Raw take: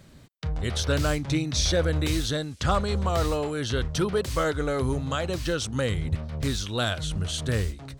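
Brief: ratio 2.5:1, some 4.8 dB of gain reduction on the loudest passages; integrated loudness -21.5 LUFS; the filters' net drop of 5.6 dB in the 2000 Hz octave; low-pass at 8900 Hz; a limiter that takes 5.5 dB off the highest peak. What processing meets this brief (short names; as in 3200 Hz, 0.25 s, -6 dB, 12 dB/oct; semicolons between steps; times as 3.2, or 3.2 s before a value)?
LPF 8900 Hz; bell 2000 Hz -8 dB; compressor 2.5:1, threshold -27 dBFS; gain +11.5 dB; limiter -12 dBFS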